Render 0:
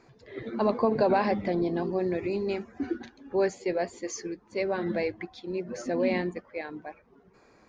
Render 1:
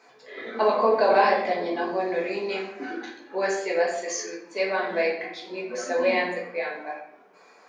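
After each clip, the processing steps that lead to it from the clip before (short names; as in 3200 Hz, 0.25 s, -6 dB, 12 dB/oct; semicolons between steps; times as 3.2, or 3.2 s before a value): HPF 600 Hz 12 dB/oct; shoebox room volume 170 m³, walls mixed, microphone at 1.5 m; gain +3.5 dB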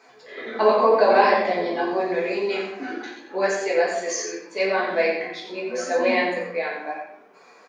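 flange 0.81 Hz, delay 7 ms, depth 7.7 ms, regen +47%; echo 89 ms -8 dB; gain +6.5 dB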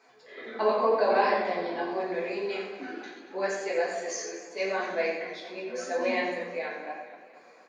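warbling echo 0.233 s, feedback 55%, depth 90 cents, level -14.5 dB; gain -7.5 dB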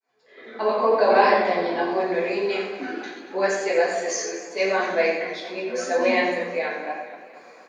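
opening faded in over 1.25 s; gain +7.5 dB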